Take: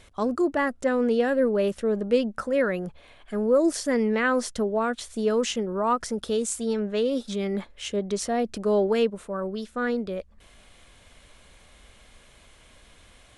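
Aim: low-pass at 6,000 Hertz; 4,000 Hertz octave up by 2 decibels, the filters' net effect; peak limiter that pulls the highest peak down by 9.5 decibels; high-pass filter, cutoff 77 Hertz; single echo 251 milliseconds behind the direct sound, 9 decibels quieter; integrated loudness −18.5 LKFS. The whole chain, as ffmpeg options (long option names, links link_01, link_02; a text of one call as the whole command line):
ffmpeg -i in.wav -af "highpass=77,lowpass=6000,equalizer=frequency=4000:width_type=o:gain=3.5,alimiter=limit=-20dB:level=0:latency=1,aecho=1:1:251:0.355,volume=10dB" out.wav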